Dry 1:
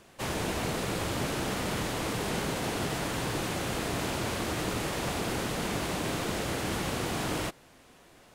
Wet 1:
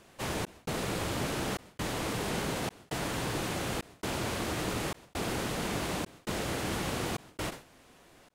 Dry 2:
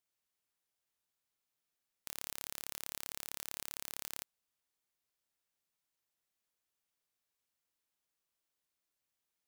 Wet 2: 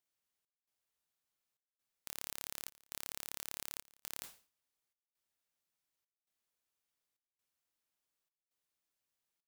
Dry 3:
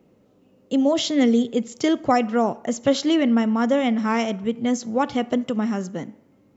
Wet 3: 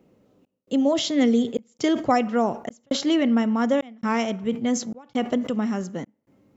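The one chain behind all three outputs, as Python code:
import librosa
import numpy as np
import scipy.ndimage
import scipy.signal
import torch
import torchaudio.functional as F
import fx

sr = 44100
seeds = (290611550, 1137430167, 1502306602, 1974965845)

y = fx.step_gate(x, sr, bpm=67, pattern='xx.xxxx.xx', floor_db=-60.0, edge_ms=4.5)
y = fx.sustainer(y, sr, db_per_s=150.0)
y = y * 10.0 ** (-1.5 / 20.0)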